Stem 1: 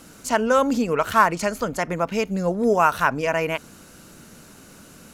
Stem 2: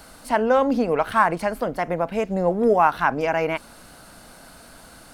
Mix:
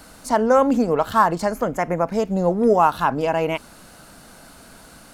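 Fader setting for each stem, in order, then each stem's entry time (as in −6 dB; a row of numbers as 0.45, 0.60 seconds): −5.5, −0.5 decibels; 0.00, 0.00 seconds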